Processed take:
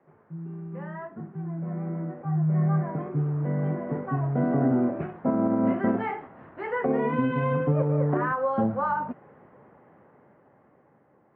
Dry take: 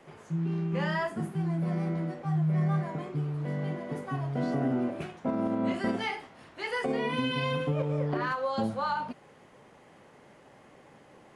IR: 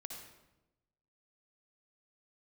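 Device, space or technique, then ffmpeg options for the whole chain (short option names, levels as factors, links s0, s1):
action camera in a waterproof case: -af "highpass=75,lowpass=f=1700:w=0.5412,lowpass=f=1700:w=1.3066,lowshelf=f=360:g=2.5,dynaudnorm=f=420:g=11:m=5.31,volume=0.355" -ar 44100 -c:a aac -b:a 48k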